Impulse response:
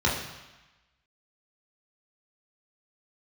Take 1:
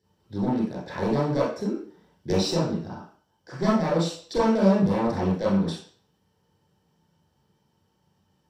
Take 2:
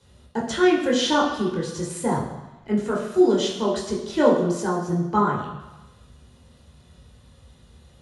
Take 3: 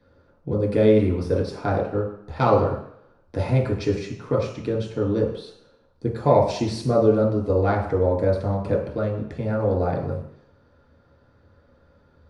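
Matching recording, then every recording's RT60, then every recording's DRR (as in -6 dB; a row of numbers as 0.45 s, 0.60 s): 2; 0.50 s, 1.1 s, 0.70 s; -8.5 dB, -4.5 dB, -4.0 dB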